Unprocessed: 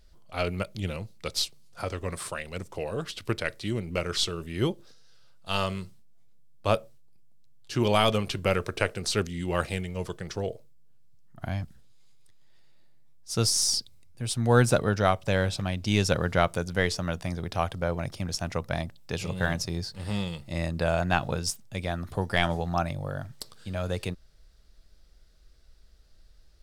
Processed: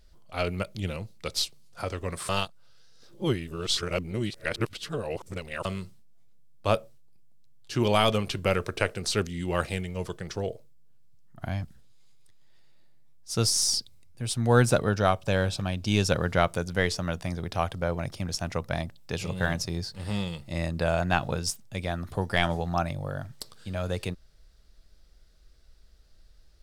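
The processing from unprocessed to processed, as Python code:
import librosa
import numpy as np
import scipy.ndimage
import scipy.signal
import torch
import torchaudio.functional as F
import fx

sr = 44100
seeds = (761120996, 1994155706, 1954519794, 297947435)

y = fx.notch(x, sr, hz=2000.0, q=8.9, at=(14.89, 16.11))
y = fx.edit(y, sr, fx.reverse_span(start_s=2.29, length_s=3.36), tone=tone)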